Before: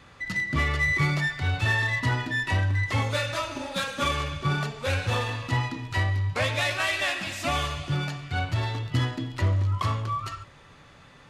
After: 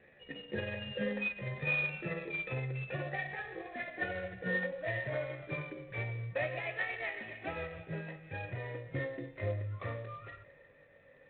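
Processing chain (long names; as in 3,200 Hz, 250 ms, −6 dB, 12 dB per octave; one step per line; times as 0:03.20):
pitch glide at a constant tempo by +6.5 semitones ending unshifted
formant resonators in series e
level +6 dB
IMA ADPCM 32 kbit/s 8,000 Hz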